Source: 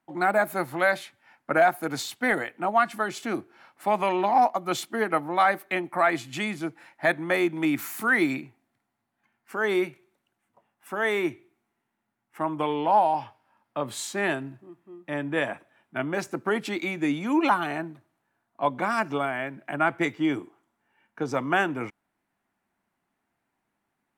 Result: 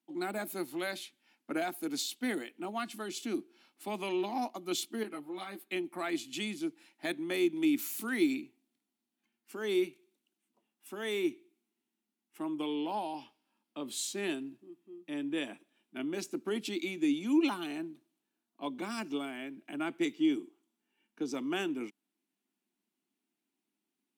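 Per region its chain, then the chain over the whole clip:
0:05.03–0:05.72: notch filter 5,900 Hz, Q 5.2 + downward compressor 1.5 to 1, threshold −26 dBFS + string-ensemble chorus
whole clip: high-pass filter 230 Hz 24 dB per octave; flat-topped bell 1,000 Hz −14.5 dB 2.4 octaves; level −2 dB

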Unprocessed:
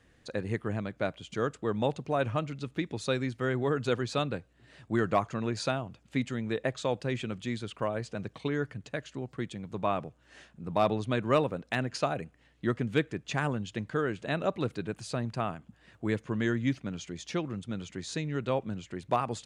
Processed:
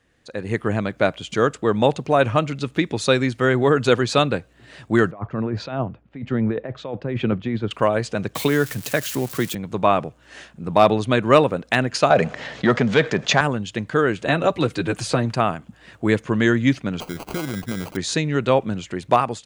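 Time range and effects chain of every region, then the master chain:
0:05.11–0:07.71: compressor whose output falls as the input rises −34 dBFS + head-to-tape spacing loss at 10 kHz 43 dB + multiband upward and downward expander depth 100%
0:08.35–0:09.55: spike at every zero crossing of −36 dBFS + multiband upward and downward compressor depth 40%
0:12.10–0:13.41: leveller curve on the samples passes 1 + loudspeaker in its box 160–6,500 Hz, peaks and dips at 310 Hz −10 dB, 610 Hz +5 dB, 2,700 Hz −4 dB + envelope flattener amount 50%
0:14.25–0:15.35: notch comb filter 210 Hz + multiband upward and downward compressor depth 70%
0:17.00–0:17.97: parametric band 3,300 Hz −8.5 dB 0.56 octaves + downward compressor 12 to 1, threshold −34 dBFS + sample-rate reduction 1,800 Hz
whole clip: automatic gain control gain up to 15 dB; low-shelf EQ 220 Hz −4.5 dB

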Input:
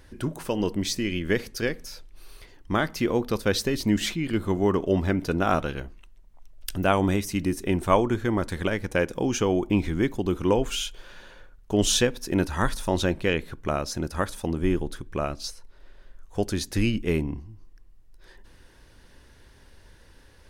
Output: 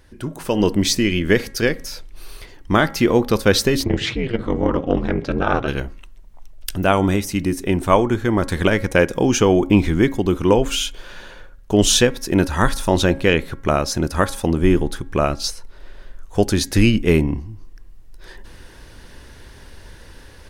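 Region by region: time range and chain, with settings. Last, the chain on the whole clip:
0:03.84–0:05.68: low-pass filter 4,000 Hz + ring modulation 120 Hz + saturating transformer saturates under 320 Hz
whole clip: hum removal 273.1 Hz, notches 8; automatic gain control gain up to 11.5 dB

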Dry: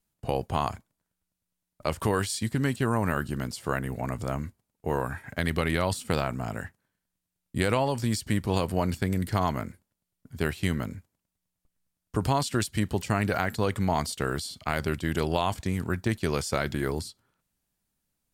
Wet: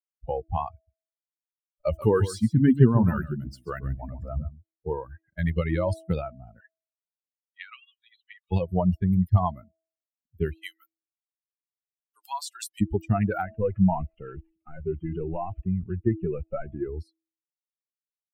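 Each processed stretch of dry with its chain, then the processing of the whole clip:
0:00.74–0:04.90: mu-law and A-law mismatch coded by mu + single-tap delay 136 ms −5 dB
0:06.60–0:08.52: linear-phase brick-wall band-pass 1,100–4,200 Hz + multiband upward and downward compressor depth 40%
0:10.62–0:12.81: high-pass filter 1,100 Hz + high-shelf EQ 5,100 Hz +6 dB
0:13.46–0:16.88: variable-slope delta modulation 16 kbit/s + transient designer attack 0 dB, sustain +6 dB
whole clip: spectral dynamics exaggerated over time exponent 3; tilt shelving filter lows +8.5 dB; hum removal 324.6 Hz, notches 2; level +5.5 dB

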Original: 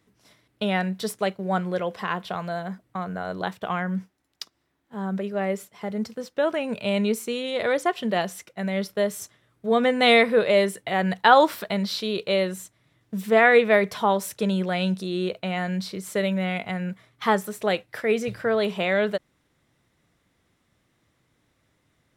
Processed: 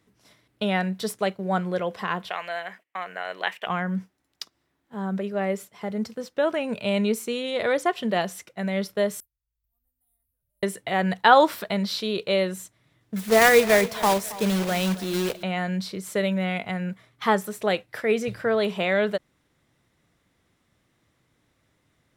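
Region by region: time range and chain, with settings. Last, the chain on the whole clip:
0:02.30–0:03.67: noise gate −58 dBFS, range −17 dB + high-pass filter 570 Hz + flat-topped bell 2,300 Hz +12 dB 1 octave
0:09.20–0:10.63: inverse Chebyshev band-stop filter 200–5,100 Hz, stop band 70 dB + tilt shelving filter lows +4 dB, about 1,500 Hz
0:13.16–0:15.43: one scale factor per block 3 bits + repeating echo 272 ms, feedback 35%, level −17.5 dB
whole clip: no processing

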